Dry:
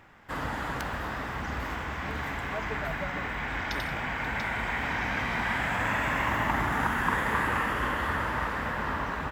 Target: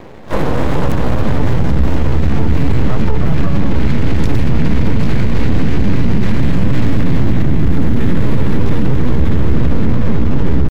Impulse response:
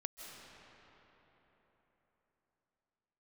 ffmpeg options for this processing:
-filter_complex "[0:a]highpass=f=130:p=1,lowshelf=f=690:t=q:w=3:g=13,bandreject=f=50:t=h:w=6,bandreject=f=100:t=h:w=6,bandreject=f=150:t=h:w=6,bandreject=f=200:t=h:w=6,bandreject=f=250:t=h:w=6,bandreject=f=300:t=h:w=6,bandreject=f=350:t=h:w=6,bandreject=f=400:t=h:w=6,bandreject=f=450:t=h:w=6,asplit=3[s0][s1][s2];[s1]asetrate=52444,aresample=44100,atempo=0.840896,volume=0.501[s3];[s2]asetrate=88200,aresample=44100,atempo=0.5,volume=0.355[s4];[s0][s3][s4]amix=inputs=3:normalize=0,acompressor=threshold=0.0891:ratio=4,atempo=0.87,aeval=exprs='max(val(0),0)':c=same,asubboost=boost=10:cutoff=190,alimiter=level_in=5.31:limit=0.891:release=50:level=0:latency=1,volume=0.891"

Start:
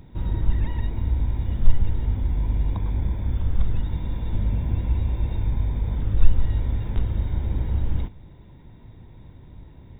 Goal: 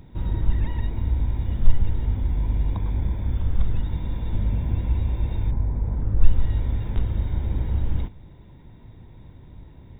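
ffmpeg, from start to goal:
-filter_complex "[0:a]asettb=1/sr,asplit=3[s0][s1][s2];[s0]atrim=end=5.514[s3];[s1]atrim=start=5.51:end=6.24,asetpts=PTS-STARTPTS,afade=t=in:d=0.004:c=qsin,afade=t=out:st=0.726:d=0.004:c=qsin,lowpass=1400[s4];[s2]atrim=start=6.236[s5];[s3][s4]acrossfade=d=0.004:c1=hsin:c2=qsin[s6];[s6][s5]acrossfade=d=0.004:c1=qsin:c2=hsin"

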